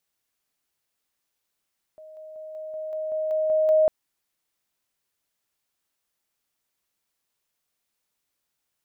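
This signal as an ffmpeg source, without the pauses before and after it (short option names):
-f lavfi -i "aevalsrc='pow(10,(-42+3*floor(t/0.19))/20)*sin(2*PI*625*t)':d=1.9:s=44100"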